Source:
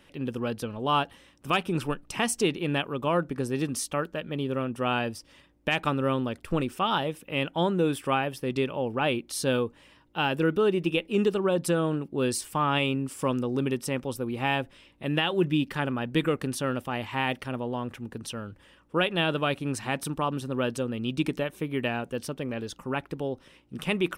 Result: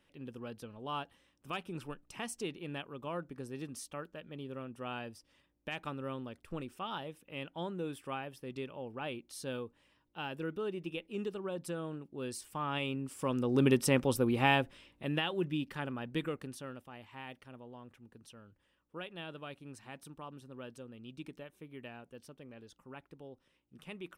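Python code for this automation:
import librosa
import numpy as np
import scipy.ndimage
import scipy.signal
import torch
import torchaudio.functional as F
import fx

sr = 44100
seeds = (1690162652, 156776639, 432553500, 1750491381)

y = fx.gain(x, sr, db=fx.line((12.19, -14.0), (13.29, -7.0), (13.67, 2.0), (14.26, 2.0), (15.45, -10.0), (16.17, -10.0), (16.9, -19.0)))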